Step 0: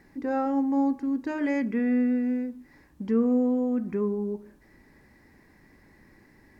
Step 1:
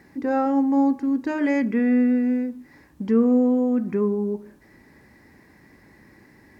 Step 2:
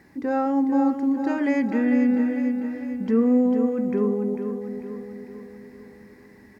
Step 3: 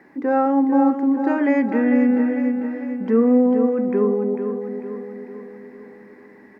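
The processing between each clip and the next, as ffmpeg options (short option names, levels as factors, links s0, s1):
-af "highpass=64,volume=1.78"
-af "aecho=1:1:447|894|1341|1788|2235|2682:0.422|0.223|0.118|0.0628|0.0333|0.0176,volume=0.841"
-filter_complex "[0:a]acrossover=split=210 2400:gain=0.1 1 0.178[s0][s1][s2];[s0][s1][s2]amix=inputs=3:normalize=0,volume=2"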